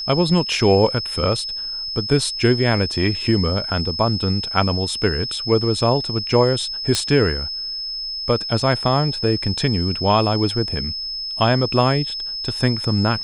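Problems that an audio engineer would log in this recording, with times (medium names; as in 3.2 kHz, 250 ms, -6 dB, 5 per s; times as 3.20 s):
whine 5.2 kHz -25 dBFS
6.95 s: pop -4 dBFS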